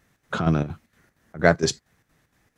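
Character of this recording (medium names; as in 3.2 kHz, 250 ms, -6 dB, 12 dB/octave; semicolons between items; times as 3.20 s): chopped level 4.3 Hz, depth 60%, duty 70%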